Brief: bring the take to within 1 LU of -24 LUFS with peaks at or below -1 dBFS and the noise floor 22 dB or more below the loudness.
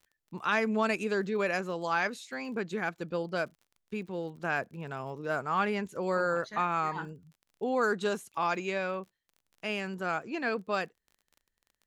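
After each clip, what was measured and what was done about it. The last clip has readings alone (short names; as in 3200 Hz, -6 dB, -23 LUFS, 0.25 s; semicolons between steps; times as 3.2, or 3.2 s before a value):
ticks 34/s; loudness -32.0 LUFS; peak -15.0 dBFS; loudness target -24.0 LUFS
-> de-click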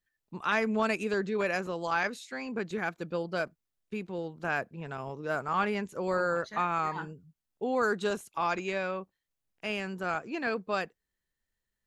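ticks 0/s; loudness -32.0 LUFS; peak -15.0 dBFS; loudness target -24.0 LUFS
-> gain +8 dB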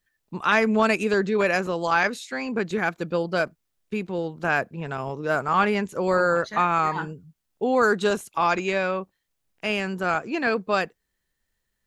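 loudness -24.0 LUFS; peak -7.0 dBFS; noise floor -78 dBFS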